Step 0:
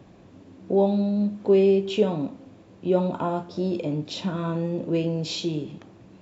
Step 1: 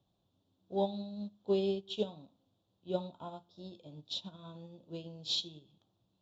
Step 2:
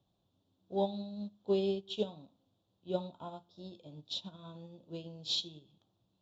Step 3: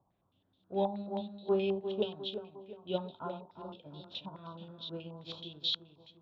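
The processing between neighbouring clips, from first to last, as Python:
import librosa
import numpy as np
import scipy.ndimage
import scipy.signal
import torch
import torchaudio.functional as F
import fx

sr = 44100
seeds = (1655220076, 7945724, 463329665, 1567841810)

y1 = fx.curve_eq(x, sr, hz=(120.0, 280.0, 450.0, 770.0, 1400.0, 2100.0, 3500.0, 5000.0, 9800.0), db=(0, -7, -6, 0, -5, -17, 12, 3, -1))
y1 = fx.upward_expand(y1, sr, threshold_db=-34.0, expansion=2.5)
y1 = y1 * librosa.db_to_amplitude(-5.0)
y2 = y1
y3 = fx.echo_feedback(y2, sr, ms=352, feedback_pct=44, wet_db=-8.5)
y3 = fx.filter_held_lowpass(y3, sr, hz=9.4, low_hz=970.0, high_hz=3600.0)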